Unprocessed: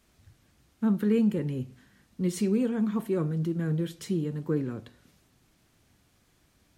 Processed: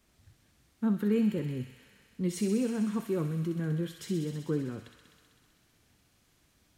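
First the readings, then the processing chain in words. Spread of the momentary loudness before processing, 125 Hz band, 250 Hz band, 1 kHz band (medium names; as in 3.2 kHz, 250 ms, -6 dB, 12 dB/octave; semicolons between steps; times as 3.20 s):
9 LU, -3.0 dB, -3.0 dB, -2.5 dB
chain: wow and flutter 19 cents; feedback echo behind a high-pass 64 ms, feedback 84%, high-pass 1.8 kHz, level -6 dB; trim -3 dB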